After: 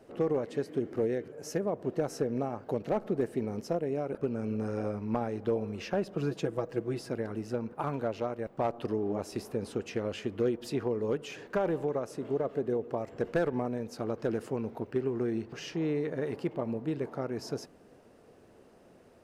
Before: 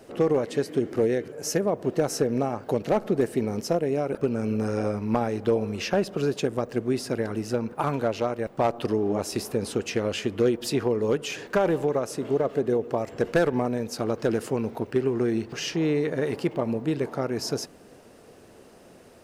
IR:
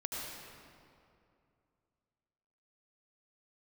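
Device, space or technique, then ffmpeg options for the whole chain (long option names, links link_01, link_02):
behind a face mask: -filter_complex "[0:a]asettb=1/sr,asplit=3[link_01][link_02][link_03];[link_01]atrim=end=6.154[link_04];[link_02]atrim=start=6.15:end=7.1,asetpts=PTS-STARTPTS,afade=type=in:duration=0.004:curve=qsin,afade=type=out:start_time=0.946:duration=0.004:curve=qsin,aecho=1:1:6.1:0.7,atrim=end_sample=41895[link_05];[link_03]atrim=start=7.096[link_06];[link_04][link_05]acrossfade=duration=0.004:curve1=hsin:curve2=qsin[link_07];[link_07][link_06]acrossfade=duration=0.004:curve1=qsin:curve2=hsin,highshelf=frequency=2800:gain=-8,volume=-6.5dB"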